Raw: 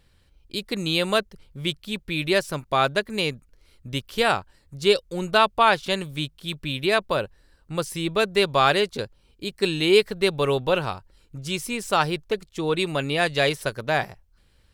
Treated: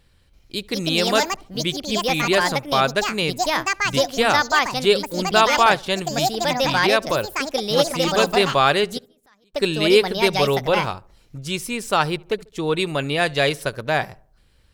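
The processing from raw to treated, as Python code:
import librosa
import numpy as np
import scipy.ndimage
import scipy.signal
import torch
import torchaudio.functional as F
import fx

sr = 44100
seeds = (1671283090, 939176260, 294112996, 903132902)

y = fx.echo_pitch(x, sr, ms=334, semitones=5, count=2, db_per_echo=-3.0)
y = fx.gate_flip(y, sr, shuts_db=-27.0, range_db=-35, at=(8.97, 9.53), fade=0.02)
y = fx.echo_filtered(y, sr, ms=71, feedback_pct=46, hz=1400.0, wet_db=-23.0)
y = y * librosa.db_to_amplitude(2.0)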